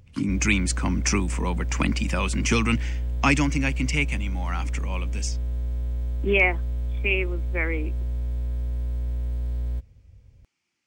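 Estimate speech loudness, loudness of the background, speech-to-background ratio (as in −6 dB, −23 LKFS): −25.5 LKFS, −30.0 LKFS, 4.5 dB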